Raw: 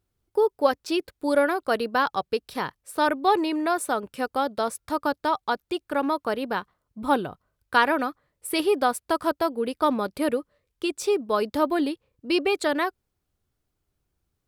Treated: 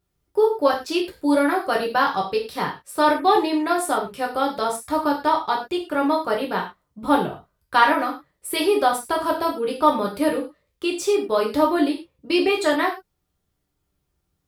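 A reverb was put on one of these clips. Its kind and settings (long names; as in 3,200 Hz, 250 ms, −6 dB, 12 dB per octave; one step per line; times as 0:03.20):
reverb whose tail is shaped and stops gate 140 ms falling, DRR −1.5 dB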